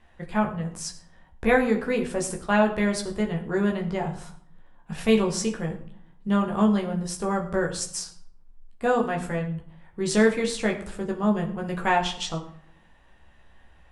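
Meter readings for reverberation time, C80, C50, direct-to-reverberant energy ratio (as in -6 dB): 0.65 s, 13.5 dB, 11.0 dB, 0.5 dB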